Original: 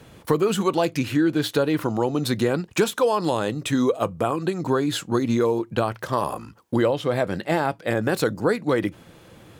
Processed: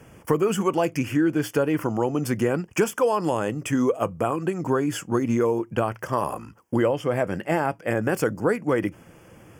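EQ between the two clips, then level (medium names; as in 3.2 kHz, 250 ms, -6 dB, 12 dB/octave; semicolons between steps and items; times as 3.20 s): Butterworth band-stop 3.9 kHz, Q 2.1; -1.0 dB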